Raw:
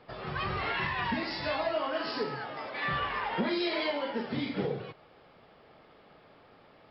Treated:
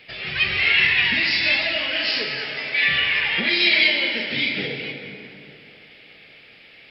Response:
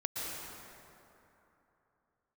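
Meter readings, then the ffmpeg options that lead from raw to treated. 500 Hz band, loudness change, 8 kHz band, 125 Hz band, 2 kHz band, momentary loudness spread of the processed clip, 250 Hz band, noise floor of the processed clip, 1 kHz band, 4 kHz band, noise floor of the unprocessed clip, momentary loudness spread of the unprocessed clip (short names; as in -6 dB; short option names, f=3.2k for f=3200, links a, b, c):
+0.5 dB, +13.5 dB, n/a, +2.0 dB, +17.0 dB, 12 LU, +1.5 dB, -48 dBFS, -3.0 dB, +18.0 dB, -59 dBFS, 6 LU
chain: -filter_complex "[0:a]highshelf=f=1.6k:t=q:w=3:g=13,asplit=2[a][b];[1:a]atrim=start_sample=2205[c];[b][c]afir=irnorm=-1:irlink=0,volume=-5dB[d];[a][d]amix=inputs=2:normalize=0,aresample=32000,aresample=44100,volume=-2.5dB"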